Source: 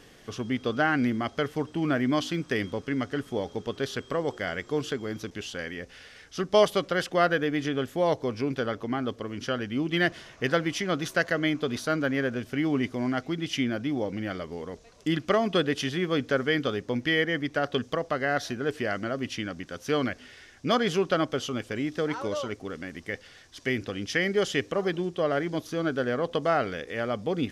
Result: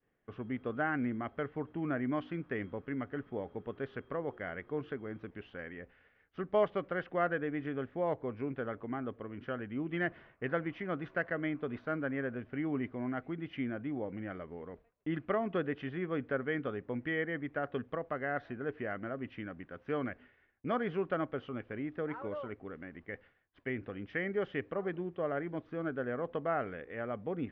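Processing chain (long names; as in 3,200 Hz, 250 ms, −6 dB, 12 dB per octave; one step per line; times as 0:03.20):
downward expander −42 dBFS
low-pass filter 2,200 Hz 24 dB per octave
level −8.5 dB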